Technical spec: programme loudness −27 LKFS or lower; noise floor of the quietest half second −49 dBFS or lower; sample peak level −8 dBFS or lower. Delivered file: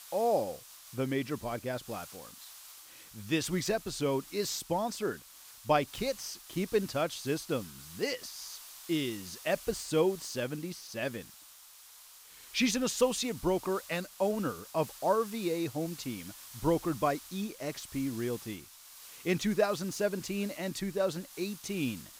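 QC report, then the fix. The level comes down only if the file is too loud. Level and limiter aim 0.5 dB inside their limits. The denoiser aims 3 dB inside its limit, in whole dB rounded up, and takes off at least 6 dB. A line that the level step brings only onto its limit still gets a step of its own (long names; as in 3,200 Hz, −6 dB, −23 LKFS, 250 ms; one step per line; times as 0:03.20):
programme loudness −33.0 LKFS: in spec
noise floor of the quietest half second −55 dBFS: in spec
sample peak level −14.0 dBFS: in spec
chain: no processing needed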